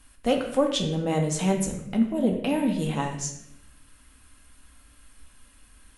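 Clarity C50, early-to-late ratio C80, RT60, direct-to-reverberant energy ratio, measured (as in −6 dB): 6.5 dB, 9.0 dB, 0.80 s, 1.5 dB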